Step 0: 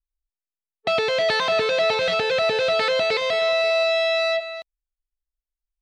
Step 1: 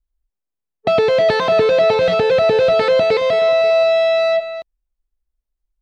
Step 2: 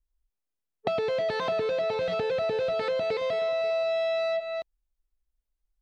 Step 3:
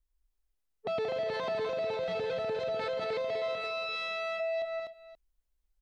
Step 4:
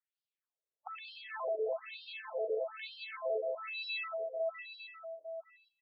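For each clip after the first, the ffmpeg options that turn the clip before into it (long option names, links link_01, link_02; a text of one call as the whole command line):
ffmpeg -i in.wav -af "tiltshelf=frequency=970:gain=7.5,volume=5dB" out.wav
ffmpeg -i in.wav -af "acompressor=threshold=-23dB:ratio=6,volume=-3.5dB" out.wav
ffmpeg -i in.wav -filter_complex "[0:a]asplit=2[link_01][link_02];[link_02]aecho=0:1:179|249|531:0.335|0.562|0.106[link_03];[link_01][link_03]amix=inputs=2:normalize=0,alimiter=level_in=2.5dB:limit=-24dB:level=0:latency=1:release=53,volume=-2.5dB" out.wav
ffmpeg -i in.wav -filter_complex "[0:a]asplit=2[link_01][link_02];[link_02]adelay=816.3,volume=-9dB,highshelf=frequency=4000:gain=-18.4[link_03];[link_01][link_03]amix=inputs=2:normalize=0,afftfilt=real='re*between(b*sr/1024,450*pow(3800/450,0.5+0.5*sin(2*PI*1.1*pts/sr))/1.41,450*pow(3800/450,0.5+0.5*sin(2*PI*1.1*pts/sr))*1.41)':imag='im*between(b*sr/1024,450*pow(3800/450,0.5+0.5*sin(2*PI*1.1*pts/sr))/1.41,450*pow(3800/450,0.5+0.5*sin(2*PI*1.1*pts/sr))*1.41)':win_size=1024:overlap=0.75" out.wav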